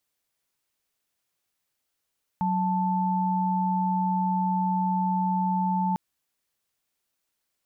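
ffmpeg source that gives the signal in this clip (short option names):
-f lavfi -i "aevalsrc='0.0562*(sin(2*PI*185*t)+sin(2*PI*880*t))':d=3.55:s=44100"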